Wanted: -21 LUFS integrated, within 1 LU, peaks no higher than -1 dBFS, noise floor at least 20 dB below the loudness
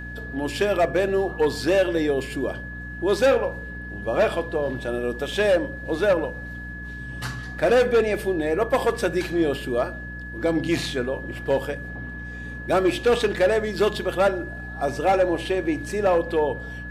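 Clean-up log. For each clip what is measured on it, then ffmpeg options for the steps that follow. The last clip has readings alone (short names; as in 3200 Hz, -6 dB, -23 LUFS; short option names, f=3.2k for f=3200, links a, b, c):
hum 60 Hz; harmonics up to 300 Hz; hum level -35 dBFS; steady tone 1700 Hz; tone level -36 dBFS; loudness -23.5 LUFS; peak -12.0 dBFS; loudness target -21.0 LUFS
-> -af "bandreject=f=60:t=h:w=4,bandreject=f=120:t=h:w=4,bandreject=f=180:t=h:w=4,bandreject=f=240:t=h:w=4,bandreject=f=300:t=h:w=4"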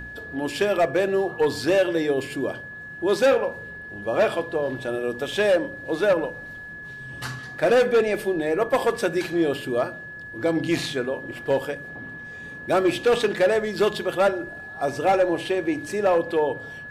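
hum none; steady tone 1700 Hz; tone level -36 dBFS
-> -af "bandreject=f=1.7k:w=30"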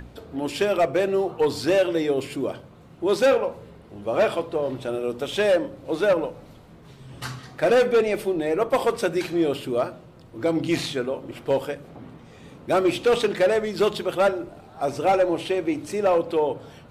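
steady tone none; loudness -23.5 LUFS; peak -12.0 dBFS; loudness target -21.0 LUFS
-> -af "volume=2.5dB"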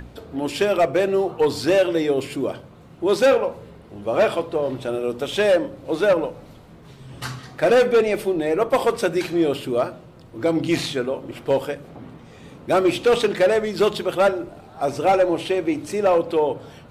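loudness -21.0 LUFS; peak -9.5 dBFS; noise floor -45 dBFS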